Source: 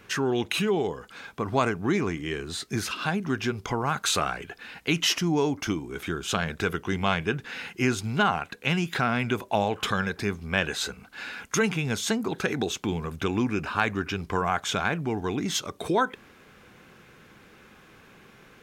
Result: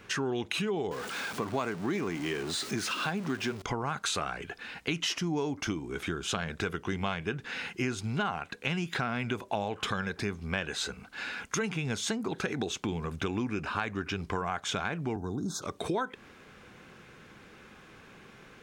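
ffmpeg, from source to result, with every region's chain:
-filter_complex "[0:a]asettb=1/sr,asplit=3[a][b][c];[a]atrim=end=0.914[d];[b]atrim=start=0.91:end=3.62,asetpts=PTS-STARTPTS,afade=t=in:d=0.004:c=qsin,afade=t=out:st=2.706:d=0.004:c=qsin,aeval=exprs='val(0)+0.5*0.0211*sgn(val(0))':c=same,highpass=150[e];[c]atrim=start=3.616[f];[d][e]acrossfade=d=0.004:c1=hsin:c2=qsin[g];[g][f]acrossfade=d=0.004:c1=qsin:c2=hsin,asettb=1/sr,asplit=3[h][i][j];[h]atrim=end=15.164[k];[i]atrim=start=15.16:end=15.62,asetpts=PTS-STARTPTS,afade=t=in:d=0.004:c=qsin,afade=t=out:st=0.456:d=0.004:c=qsin,equalizer=f=3.8k:t=o:w=2.1:g=-9,acrossover=split=240|3000[l][m][n];[m]acompressor=threshold=-35dB:ratio=6:attack=3.2:release=140:knee=2.83:detection=peak[o];[l][o][n]amix=inputs=3:normalize=0,asuperstop=centerf=2400:order=20:qfactor=1.2[p];[j]atrim=start=15.616[q];[k][p]acrossfade=d=0.004:c1=hsin:c2=qsin[r];[r][q]acrossfade=d=0.004:c1=qsin:c2=hsin,acompressor=threshold=-30dB:ratio=3,equalizer=f=13k:t=o:w=0.33:g=-13"

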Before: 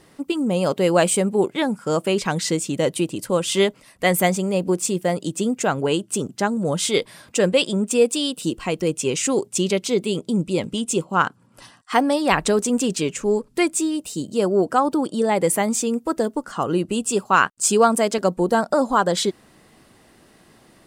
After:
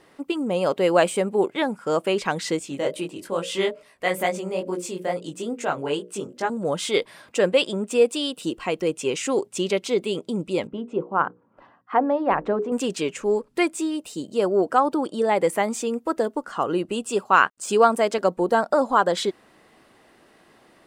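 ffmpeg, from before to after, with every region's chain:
-filter_complex "[0:a]asettb=1/sr,asplit=3[a][b][c];[a]atrim=end=2.594[d];[b]atrim=start=2.59:end=6.5,asetpts=PTS-STARTPTS,afade=t=in:d=0.004:c=qsin,afade=t=out:st=3.906:d=0.004:c=qsin,bandreject=f=60:t=h:w=6,bandreject=f=120:t=h:w=6,bandreject=f=180:t=h:w=6,bandreject=f=240:t=h:w=6,bandreject=f=300:t=h:w=6,bandreject=f=360:t=h:w=6,bandreject=f=420:t=h:w=6,bandreject=f=480:t=h:w=6,bandreject=f=540:t=h:w=6,bandreject=f=600:t=h:w=6,flanger=delay=16.5:depth=5.9:speed=2.3[e];[c]atrim=start=6.496[f];[d][e]acrossfade=d=0.004:c1=hsin:c2=qsin[g];[g][f]acrossfade=d=0.004:c1=qsin:c2=hsin,asettb=1/sr,asplit=3[h][i][j];[h]atrim=end=10.674[k];[i]atrim=start=10.67:end=12.72,asetpts=PTS-STARTPTS,afade=t=in:d=0.004:c=qsin,afade=t=out:st=2.046:d=0.004:c=qsin,lowpass=1.2k,bandreject=f=60:t=h:w=6,bandreject=f=120:t=h:w=6,bandreject=f=180:t=h:w=6,bandreject=f=240:t=h:w=6,bandreject=f=300:t=h:w=6,bandreject=f=360:t=h:w=6,bandreject=f=420:t=h:w=6,bandreject=f=480:t=h:w=6,bandreject=f=540:t=h:w=6[l];[j]atrim=start=12.716[m];[k][l]acrossfade=d=0.004:c1=hsin:c2=qsin[n];[n][m]acrossfade=d=0.004:c1=qsin:c2=hsin,deesser=0.35,bass=f=250:g=-10,treble=f=4k:g=-8"

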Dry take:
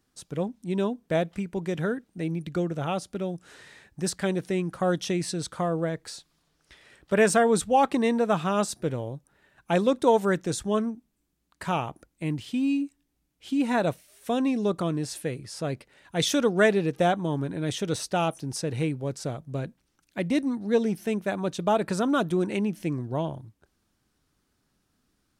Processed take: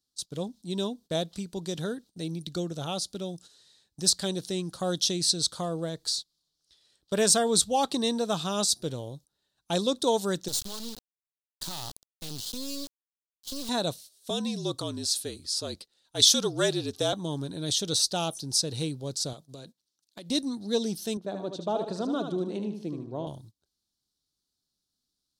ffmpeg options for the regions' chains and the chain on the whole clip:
-filter_complex "[0:a]asettb=1/sr,asplit=3[a][b][c];[a]atrim=end=10.484[d];[b]atrim=start=10.48:end=13.69,asetpts=PTS-STARTPTS,afade=t=in:d=0.004:c=qsin,afade=t=out:st=3.206:d=0.004:c=qsin,bass=f=250:g=4,treble=f=4k:g=4,acompressor=threshold=-26dB:ratio=12:attack=3.2:release=140:knee=1:detection=peak,acrusher=bits=4:dc=4:mix=0:aa=0.000001[e];[c]atrim=start=13.686[f];[d][e]acrossfade=d=0.004:c1=hsin:c2=qsin[g];[g][f]acrossfade=d=0.004:c1=qsin:c2=hsin,asettb=1/sr,asplit=3[h][i][j];[h]atrim=end=14.304[k];[i]atrim=start=14.3:end=17.13,asetpts=PTS-STARTPTS,afade=t=in:d=0.004:c=qsin,afade=t=out:st=2.826:d=0.004:c=qsin,equalizer=f=84:w=0.95:g=-15,afreqshift=-46[l];[j]atrim=start=17.126[m];[k][l]acrossfade=d=0.004:c1=hsin:c2=qsin[n];[n][m]acrossfade=d=0.004:c1=qsin:c2=hsin,asettb=1/sr,asplit=3[o][p][q];[o]atrim=end=19.334[r];[p]atrim=start=19.33:end=20.3,asetpts=PTS-STARTPTS,afade=t=in:d=0.004:c=qsin,afade=t=out:st=0.966:d=0.004:c=qsin,highpass=f=250:p=1,acompressor=threshold=-34dB:ratio=10:attack=3.2:release=140:knee=1:detection=peak[s];[q]atrim=start=20.296[t];[r][s]acrossfade=d=0.004:c1=hsin:c2=qsin[u];[u][t]acrossfade=d=0.004:c1=qsin:c2=hsin,asettb=1/sr,asplit=3[v][w][x];[v]atrim=end=21.174[y];[w]atrim=start=21.17:end=23.27,asetpts=PTS-STARTPTS,afade=t=in:d=0.004:c=qsin,afade=t=out:st=2.096:d=0.004:c=qsin,bandpass=f=440:t=q:w=0.56,aecho=1:1:76|152|228|304:0.447|0.165|0.0612|0.0226,atrim=end_sample=92610[z];[x]atrim=start=23.266[aa];[y][z]acrossfade=d=0.004:c1=hsin:c2=qsin[ab];[ab][aa]acrossfade=d=0.004:c1=qsin:c2=hsin,agate=range=-14dB:threshold=-45dB:ratio=16:detection=peak,highshelf=f=3k:t=q:w=3:g=11,volume=-4.5dB"

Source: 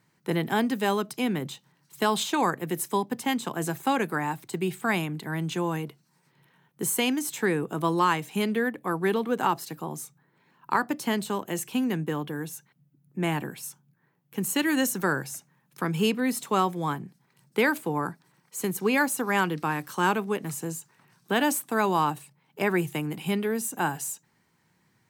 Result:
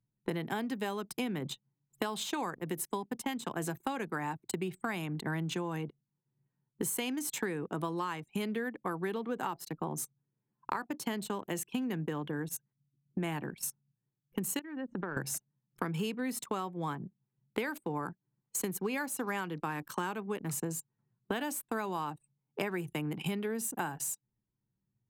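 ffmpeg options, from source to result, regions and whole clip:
-filter_complex "[0:a]asettb=1/sr,asplit=3[a][b][c];[a]atrim=end=14.594[d];[b]atrim=start=14.59:end=15.17,asetpts=PTS-STARTPTS,afade=t=in:d=0.004:c=qsin,afade=t=out:st=0.576:d=0.004:c=qsin,lowpass=2.4k,acompressor=threshold=-35dB:ratio=16:attack=3.2:release=140:knee=1:detection=peak[e];[c]atrim=start=15.166[f];[d][e]acrossfade=d=0.004:c1=hsin:c2=qsin[g];[g][f]acrossfade=d=0.004:c1=qsin:c2=hsin,anlmdn=0.631,acompressor=threshold=-37dB:ratio=10,volume=5dB"

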